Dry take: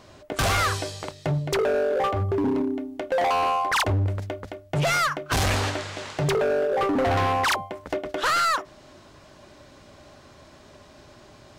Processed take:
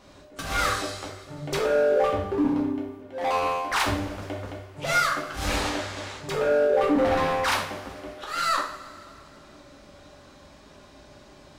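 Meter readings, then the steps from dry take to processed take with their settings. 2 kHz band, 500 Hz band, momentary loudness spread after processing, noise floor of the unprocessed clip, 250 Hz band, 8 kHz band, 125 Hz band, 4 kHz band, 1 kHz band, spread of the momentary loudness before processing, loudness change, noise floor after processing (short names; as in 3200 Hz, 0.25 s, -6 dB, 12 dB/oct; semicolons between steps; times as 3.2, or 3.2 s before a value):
-1.5 dB, +0.5 dB, 16 LU, -51 dBFS, +0.5 dB, -2.5 dB, -9.5 dB, -2.0 dB, -2.5 dB, 10 LU, -1.0 dB, -51 dBFS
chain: auto swell 0.192 s; two-slope reverb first 0.52 s, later 2.6 s, from -18 dB, DRR -3 dB; gain -5.5 dB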